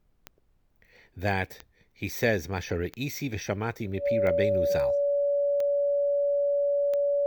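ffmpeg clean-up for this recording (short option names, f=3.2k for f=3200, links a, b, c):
-af "adeclick=t=4,bandreject=f=570:w=30,agate=range=-21dB:threshold=-57dB"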